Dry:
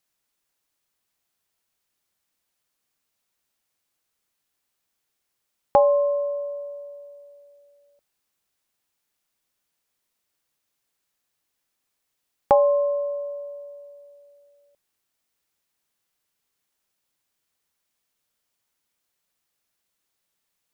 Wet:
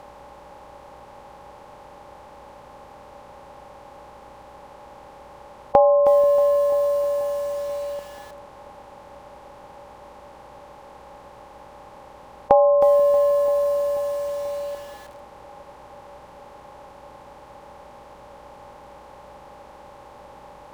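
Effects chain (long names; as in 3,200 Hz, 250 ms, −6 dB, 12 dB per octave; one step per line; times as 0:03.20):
compressor on every frequency bin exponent 0.4
parametric band 960 Hz +5.5 dB 0.21 octaves
delay with a low-pass on its return 486 ms, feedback 75%, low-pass 570 Hz, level −15.5 dB
treble cut that deepens with the level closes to 980 Hz, closed at −17.5 dBFS
mains hum 60 Hz, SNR 32 dB
feedback echo at a low word length 316 ms, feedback 35%, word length 6 bits, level −10 dB
level +1 dB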